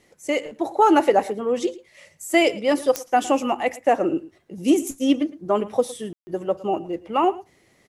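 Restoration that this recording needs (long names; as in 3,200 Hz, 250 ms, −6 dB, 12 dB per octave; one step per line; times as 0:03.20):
click removal
ambience match 0:06.13–0:06.27
echo removal 111 ms −19 dB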